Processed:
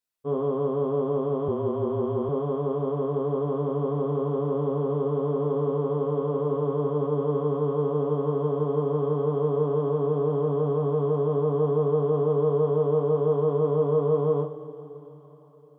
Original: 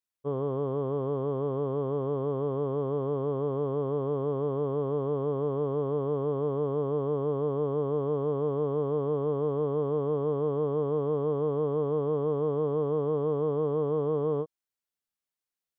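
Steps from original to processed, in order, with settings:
coupled-rooms reverb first 0.31 s, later 4.7 s, from −21 dB, DRR −1 dB
0:01.48–0:02.29: frequency shifter −29 Hz

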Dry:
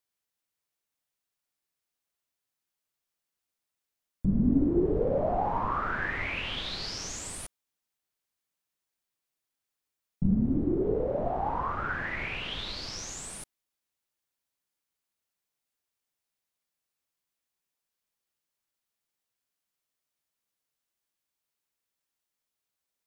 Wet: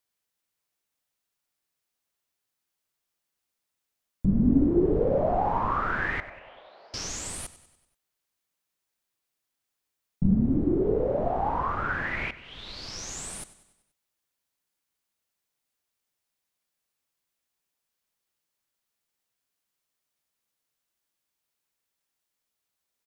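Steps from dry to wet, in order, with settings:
0:06.20–0:06.94: four-pole ladder band-pass 720 Hz, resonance 55%
0:12.31–0:13.19: fade in
repeating echo 96 ms, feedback 53%, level −16.5 dB
level +3 dB

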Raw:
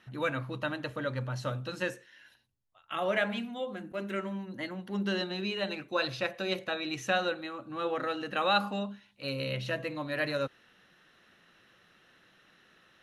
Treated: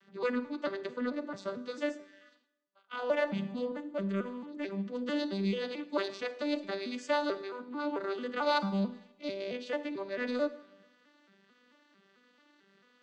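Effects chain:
vocoder with an arpeggio as carrier major triad, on G3, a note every 221 ms
bass and treble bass −5 dB, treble +7 dB
notch filter 750 Hz, Q 16
in parallel at −10.5 dB: soft clipping −35.5 dBFS, distortion −7 dB
on the sum: four-comb reverb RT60 0.87 s, combs from 33 ms, DRR 14 dB

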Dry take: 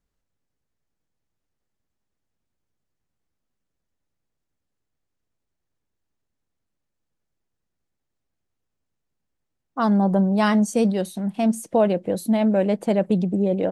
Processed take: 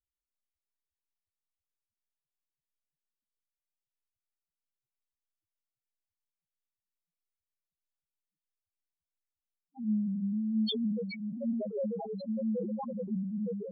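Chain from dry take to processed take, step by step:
partials spread apart or drawn together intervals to 81%
delay with a band-pass on its return 793 ms, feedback 76%, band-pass 1,400 Hz, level −12 dB
spectral peaks only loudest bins 1
level that may fall only so fast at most 37 dB per second
level −6.5 dB

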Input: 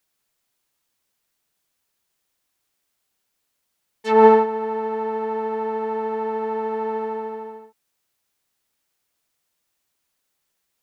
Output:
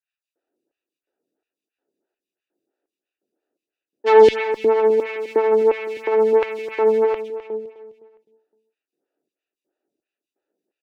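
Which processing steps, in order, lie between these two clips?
adaptive Wiener filter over 41 samples
in parallel at −1 dB: downward compressor, threshold −26 dBFS, peak gain reduction 17.5 dB
on the sum: tube saturation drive 14 dB, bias 0.25
auto-filter high-pass square 1.4 Hz 330–2,500 Hz
on a send: repeating echo 257 ms, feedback 38%, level −13 dB
on the sum: phaser with staggered stages 3 Hz
level +5.5 dB

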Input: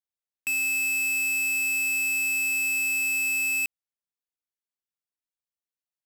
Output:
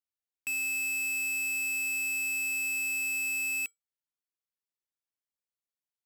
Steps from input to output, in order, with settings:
tuned comb filter 460 Hz, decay 0.16 s, harmonics odd, mix 50%

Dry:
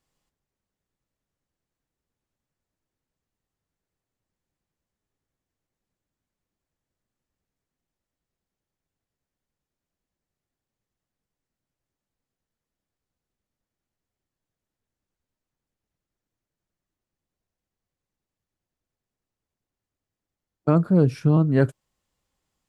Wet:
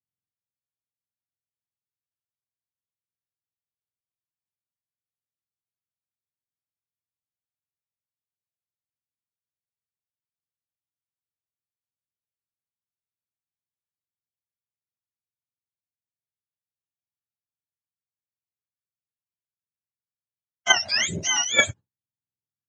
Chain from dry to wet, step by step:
frequency axis turned over on the octave scale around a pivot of 960 Hz
downward expander −36 dBFS
in parallel at +3 dB: output level in coarse steps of 20 dB
on the sum: high-frequency loss of the air 81 metres
level +1.5 dB

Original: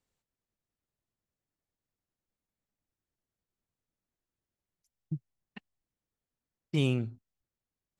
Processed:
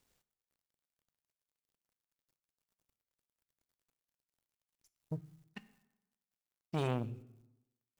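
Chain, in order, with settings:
mu-law and A-law mismatch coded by mu
dense smooth reverb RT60 0.95 s, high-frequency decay 0.6×, DRR 13.5 dB
saturating transformer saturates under 750 Hz
level −3.5 dB

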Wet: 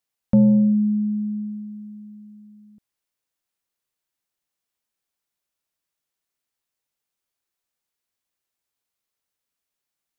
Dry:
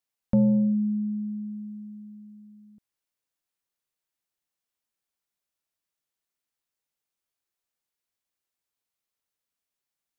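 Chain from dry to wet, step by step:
dynamic equaliser 180 Hz, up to +3 dB, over −35 dBFS, Q 1
level +3 dB

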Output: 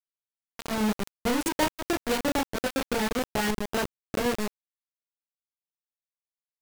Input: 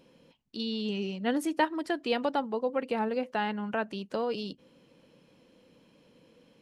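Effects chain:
each half-wave held at its own peak
double-tracking delay 33 ms −2.5 dB
bit reduction 4 bits
level −5 dB

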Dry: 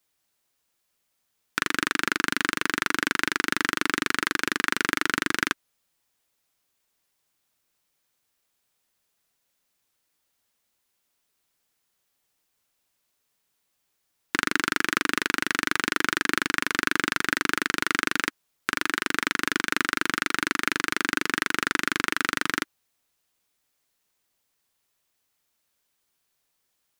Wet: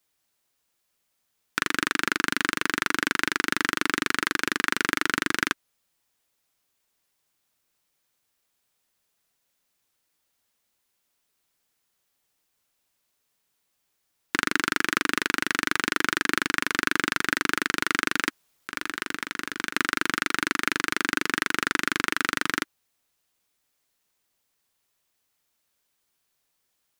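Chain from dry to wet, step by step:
0:18.28–0:19.76: compressor whose output falls as the input rises −30 dBFS, ratio −0.5

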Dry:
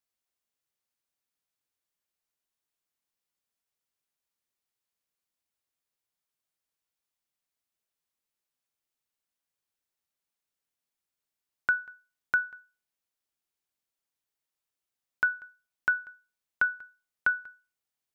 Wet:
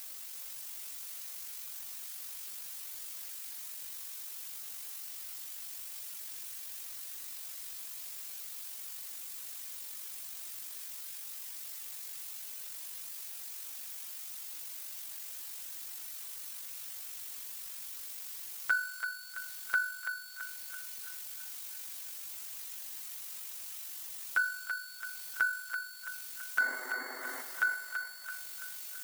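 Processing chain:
converter with a step at zero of −41.5 dBFS
spectral tilt +3 dB per octave
log-companded quantiser 6 bits
sound drawn into the spectrogram noise, 0:16.62–0:17.14, 230–2,200 Hz −39 dBFS
feedback echo with a high-pass in the loop 208 ms, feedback 57%, high-pass 450 Hz, level −6.5 dB
time stretch by overlap-add 1.6×, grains 42 ms
level −5 dB

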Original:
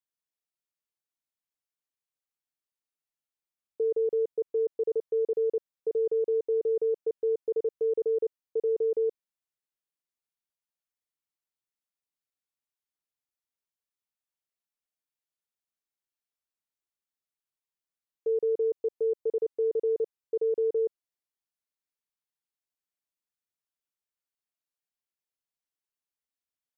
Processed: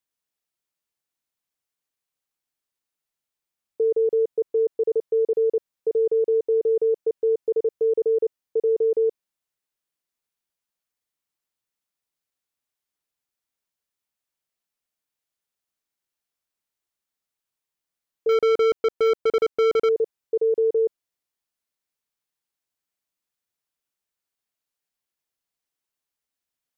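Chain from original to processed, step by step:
0:18.29–0:19.89: leveller curve on the samples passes 3
level +6 dB

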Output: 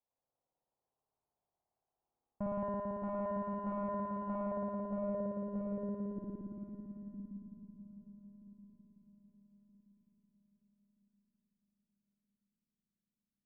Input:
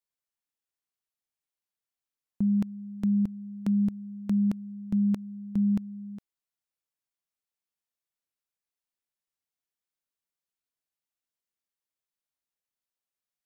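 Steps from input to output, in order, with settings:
low-pass filter 1,100 Hz
tube saturation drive 39 dB, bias 0.45
feedback echo with a long and a short gap by turns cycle 1,275 ms, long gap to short 3 to 1, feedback 31%, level −9.5 dB
spring reverb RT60 3.9 s, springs 56 ms, chirp 75 ms, DRR −6.5 dB
low-pass filter sweep 820 Hz → 220 Hz, 0:04.35–0:07.60
level +2.5 dB

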